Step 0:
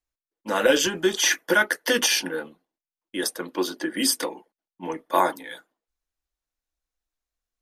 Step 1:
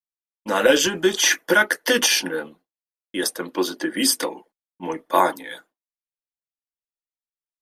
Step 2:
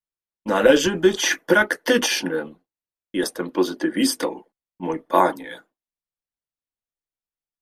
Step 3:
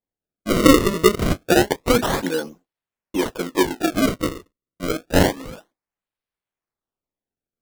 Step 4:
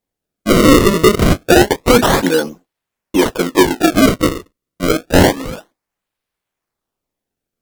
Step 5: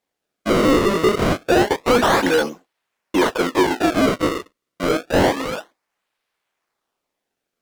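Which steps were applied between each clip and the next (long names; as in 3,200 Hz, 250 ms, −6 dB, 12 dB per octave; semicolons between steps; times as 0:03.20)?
downward expander −50 dBFS; level +3 dB
spectral tilt −2 dB per octave
sample-and-hold swept by an LFO 31×, swing 160% 0.28 Hz; level +1.5 dB
sine wavefolder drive 6 dB, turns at −3 dBFS
mid-hump overdrive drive 19 dB, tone 4,100 Hz, clips at −2 dBFS; level −6.5 dB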